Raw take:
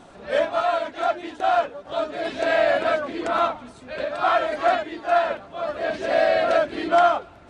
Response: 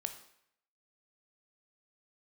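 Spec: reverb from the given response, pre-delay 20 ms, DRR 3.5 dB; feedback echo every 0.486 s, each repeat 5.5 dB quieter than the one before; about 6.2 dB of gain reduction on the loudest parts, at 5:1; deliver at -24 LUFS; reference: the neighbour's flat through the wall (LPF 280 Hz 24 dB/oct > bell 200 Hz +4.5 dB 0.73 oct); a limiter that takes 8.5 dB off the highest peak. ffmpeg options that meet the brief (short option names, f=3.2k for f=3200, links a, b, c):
-filter_complex "[0:a]acompressor=threshold=-21dB:ratio=5,alimiter=limit=-20.5dB:level=0:latency=1,aecho=1:1:486|972|1458|1944|2430|2916|3402:0.531|0.281|0.149|0.079|0.0419|0.0222|0.0118,asplit=2[a][b];[1:a]atrim=start_sample=2205,adelay=20[c];[b][c]afir=irnorm=-1:irlink=0,volume=-3dB[d];[a][d]amix=inputs=2:normalize=0,lowpass=f=280:w=0.5412,lowpass=f=280:w=1.3066,equalizer=f=200:t=o:w=0.73:g=4.5,volume=17dB"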